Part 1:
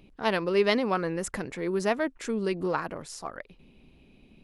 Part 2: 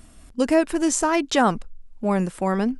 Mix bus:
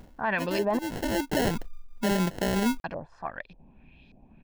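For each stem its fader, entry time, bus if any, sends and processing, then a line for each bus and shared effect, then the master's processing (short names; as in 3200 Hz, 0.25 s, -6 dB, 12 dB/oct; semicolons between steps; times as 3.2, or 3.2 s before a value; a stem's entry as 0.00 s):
-0.5 dB, 0.00 s, muted 0.79–2.84, no send, comb 1.2 ms, depth 53%; LFO low-pass saw up 1.7 Hz 560–5200 Hz
0.0 dB, 0.00 s, no send, sample-rate reducer 1200 Hz, jitter 0%; auto duck -14 dB, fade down 0.20 s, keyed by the first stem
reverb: off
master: limiter -18 dBFS, peak gain reduction 9.5 dB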